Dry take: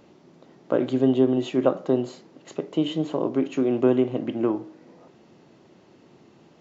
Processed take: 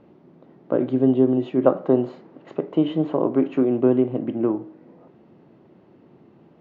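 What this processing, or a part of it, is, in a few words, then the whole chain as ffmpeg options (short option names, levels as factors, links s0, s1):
phone in a pocket: -filter_complex "[0:a]lowpass=3500,equalizer=f=180:t=o:w=2.5:g=3,highshelf=f=2400:g=-11,asettb=1/sr,asplit=3[s0][s1][s2];[s0]atrim=end=1.664[s3];[s1]atrim=start=1.66:end=3.65,asetpts=PTS-STARTPTS,afade=t=in:d=0.004:c=qsin,afade=t=out:st=1.986:d=0.004:c=qsin,equalizer=f=1200:t=o:w=3:g=5.5[s4];[s2]atrim=start=3.646[s5];[s3][s4]acrossfade=d=0.004:c1=hsin:c2=qsin[s6];[s6][s5]acrossfade=d=0.004:c1=qsin:c2=hsin"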